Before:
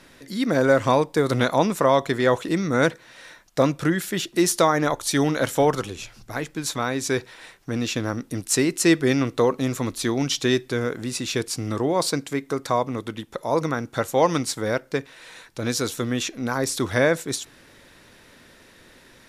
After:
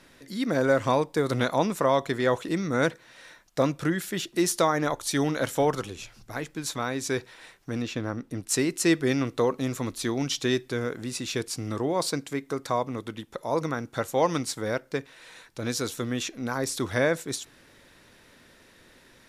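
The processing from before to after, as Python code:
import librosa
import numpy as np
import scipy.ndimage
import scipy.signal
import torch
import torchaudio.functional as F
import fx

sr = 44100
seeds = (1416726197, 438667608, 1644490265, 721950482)

y = fx.high_shelf(x, sr, hz=4100.0, db=-10.5, at=(7.82, 8.49))
y = F.gain(torch.from_numpy(y), -4.5).numpy()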